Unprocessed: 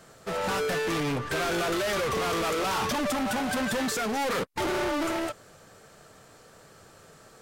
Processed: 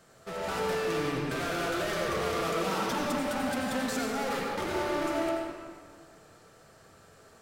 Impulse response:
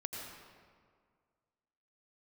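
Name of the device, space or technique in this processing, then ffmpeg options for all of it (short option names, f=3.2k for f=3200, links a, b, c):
stairwell: -filter_complex "[0:a]asettb=1/sr,asplit=3[a][b][c];[a]atrim=end=2.464[d];[b]atrim=start=2.46:end=2.87,asetpts=PTS-STARTPTS,afade=t=in:d=0.004:c=qsin,afade=t=out:st=0.406:d=0.004:c=qsin,lowshelf=f=120:t=q:w=3:g=-13.5[e];[c]atrim=start=2.866[f];[d][e]acrossfade=d=0.004:c1=hsin:c2=qsin[g];[g][f]acrossfade=d=0.004:c1=qsin:c2=hsin[h];[1:a]atrim=start_sample=2205[i];[h][i]afir=irnorm=-1:irlink=0,volume=-3.5dB"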